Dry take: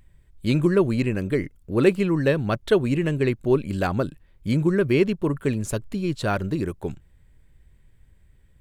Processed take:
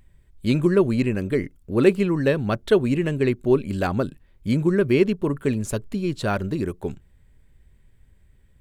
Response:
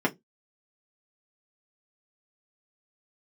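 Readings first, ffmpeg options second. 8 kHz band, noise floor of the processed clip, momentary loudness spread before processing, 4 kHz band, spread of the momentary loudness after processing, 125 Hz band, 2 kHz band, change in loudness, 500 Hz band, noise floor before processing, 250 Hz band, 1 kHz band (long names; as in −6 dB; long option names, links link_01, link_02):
0.0 dB, −56 dBFS, 8 LU, 0.0 dB, 9 LU, −0.5 dB, 0.0 dB, +1.0 dB, +1.5 dB, −57 dBFS, +1.0 dB, 0.0 dB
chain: -filter_complex "[0:a]asplit=2[link_01][link_02];[1:a]atrim=start_sample=2205,lowpass=1000[link_03];[link_02][link_03]afir=irnorm=-1:irlink=0,volume=-30.5dB[link_04];[link_01][link_04]amix=inputs=2:normalize=0"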